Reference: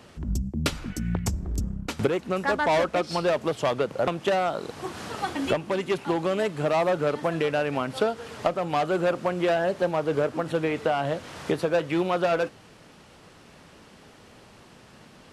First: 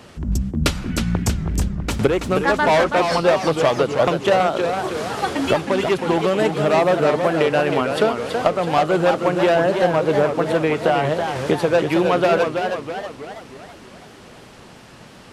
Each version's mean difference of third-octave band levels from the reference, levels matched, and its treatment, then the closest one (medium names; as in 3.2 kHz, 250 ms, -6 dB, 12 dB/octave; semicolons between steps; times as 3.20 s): 3.0 dB: modulated delay 322 ms, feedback 50%, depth 184 cents, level -6 dB; trim +6.5 dB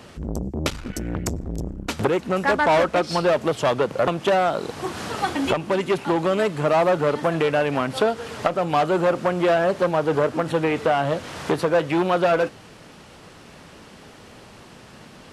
1.5 dB: transformer saturation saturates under 790 Hz; trim +6 dB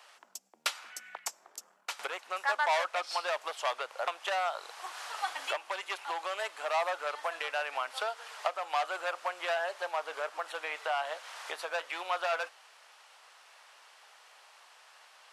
11.5 dB: high-pass 750 Hz 24 dB/octave; trim -2.5 dB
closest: second